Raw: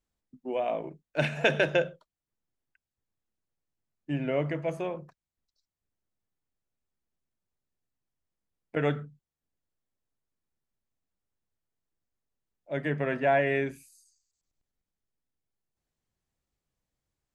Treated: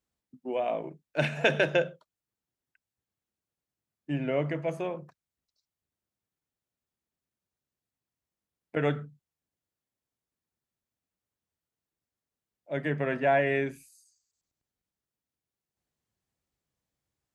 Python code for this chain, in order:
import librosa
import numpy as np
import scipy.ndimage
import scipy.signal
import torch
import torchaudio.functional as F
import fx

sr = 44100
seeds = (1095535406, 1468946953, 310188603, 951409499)

y = scipy.signal.sosfilt(scipy.signal.butter(2, 63.0, 'highpass', fs=sr, output='sos'), x)